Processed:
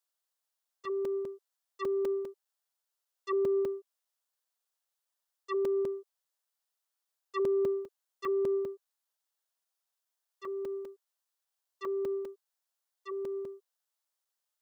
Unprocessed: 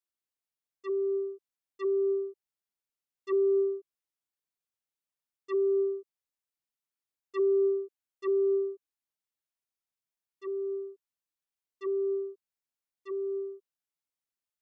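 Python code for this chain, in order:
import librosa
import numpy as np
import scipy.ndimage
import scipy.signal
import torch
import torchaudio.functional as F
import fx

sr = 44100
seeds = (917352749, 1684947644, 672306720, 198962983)

y = scipy.signal.sosfilt(scipy.signal.butter(4, 510.0, 'highpass', fs=sr, output='sos'), x)
y = fx.peak_eq(y, sr, hz=2300.0, db=-7.0, octaves=0.55)
y = fx.buffer_crackle(y, sr, first_s=0.65, period_s=0.2, block=128, kind='zero')
y = y * 10.0 ** (6.5 / 20.0)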